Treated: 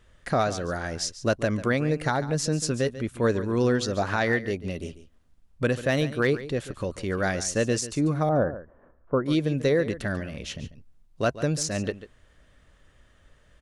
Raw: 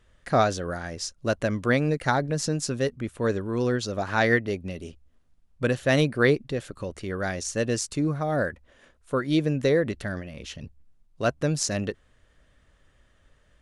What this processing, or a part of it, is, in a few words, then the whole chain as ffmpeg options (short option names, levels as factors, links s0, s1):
clipper into limiter: -filter_complex "[0:a]asettb=1/sr,asplit=3[s0][s1][s2];[s0]atrim=end=8.294[s3];[s1]atrim=start=8.29:end=9.26,asetpts=PTS-STARTPTS,afade=t=in:d=0.004:c=qsin,afade=t=out:st=0.966:d=0.004:c=qsin,lowpass=f=1200:w=0.5412,lowpass=f=1200:w=1.3066[s4];[s2]atrim=start=9.256[s5];[s3][s4]acrossfade=d=0.004:c1=hsin:c2=qsin[s6];[s6][s5]acrossfade=d=0.004:c1=qsin:c2=hsin,asoftclip=type=hard:threshold=0.316,alimiter=limit=0.15:level=0:latency=1:release=417,aecho=1:1:142:0.188,volume=1.41"